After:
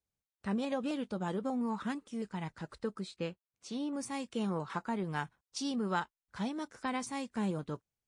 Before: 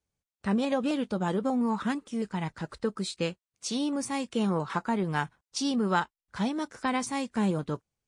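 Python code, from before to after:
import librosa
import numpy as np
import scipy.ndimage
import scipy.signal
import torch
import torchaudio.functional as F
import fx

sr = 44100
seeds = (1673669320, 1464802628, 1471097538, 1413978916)

y = fx.high_shelf(x, sr, hz=fx.line((2.99, 5000.0), (3.93, 3600.0)), db=-12.0, at=(2.99, 3.93), fade=0.02)
y = y * 10.0 ** (-7.0 / 20.0)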